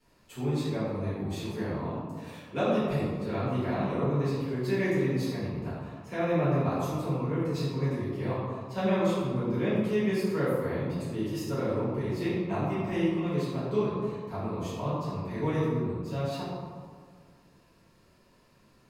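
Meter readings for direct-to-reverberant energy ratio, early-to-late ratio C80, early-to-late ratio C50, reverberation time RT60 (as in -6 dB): -12.5 dB, 0.0 dB, -2.0 dB, 1.9 s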